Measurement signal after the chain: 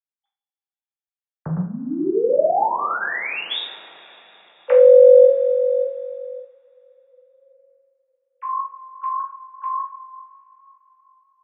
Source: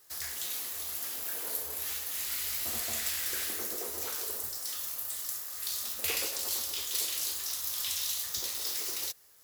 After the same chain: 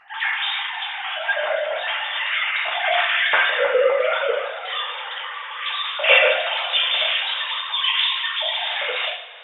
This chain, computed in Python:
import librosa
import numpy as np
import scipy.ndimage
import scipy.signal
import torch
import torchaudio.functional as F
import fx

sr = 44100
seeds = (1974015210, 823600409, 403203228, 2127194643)

y = fx.sine_speech(x, sr)
y = fx.rev_double_slope(y, sr, seeds[0], early_s=0.48, late_s=4.1, knee_db=-22, drr_db=-4.0)
y = F.gain(torch.from_numpy(y), 7.5).numpy()